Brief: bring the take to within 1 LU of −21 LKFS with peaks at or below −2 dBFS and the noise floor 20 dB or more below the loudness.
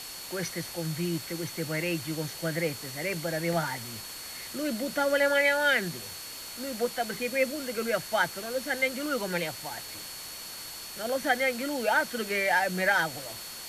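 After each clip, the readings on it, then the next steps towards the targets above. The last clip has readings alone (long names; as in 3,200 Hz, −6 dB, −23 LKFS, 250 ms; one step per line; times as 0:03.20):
interfering tone 4,400 Hz; level of the tone −44 dBFS; background noise floor −41 dBFS; target noise floor −50 dBFS; integrated loudness −29.5 LKFS; sample peak −12.0 dBFS; target loudness −21.0 LKFS
→ notch filter 4,400 Hz, Q 30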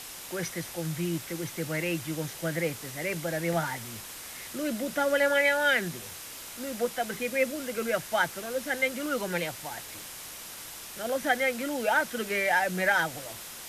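interfering tone none found; background noise floor −43 dBFS; target noise floor −50 dBFS
→ broadband denoise 7 dB, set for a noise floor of −43 dBFS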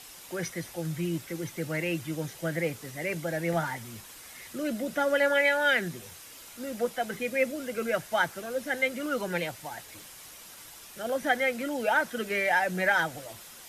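background noise floor −48 dBFS; target noise floor −49 dBFS
→ broadband denoise 6 dB, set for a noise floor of −48 dBFS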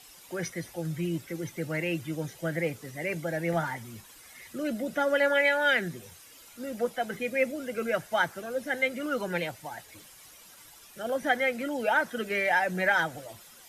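background noise floor −52 dBFS; integrated loudness −29.0 LKFS; sample peak −12.5 dBFS; target loudness −21.0 LKFS
→ level +8 dB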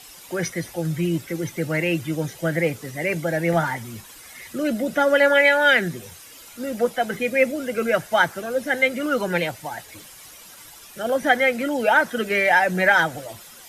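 integrated loudness −21.0 LKFS; sample peak −4.5 dBFS; background noise floor −44 dBFS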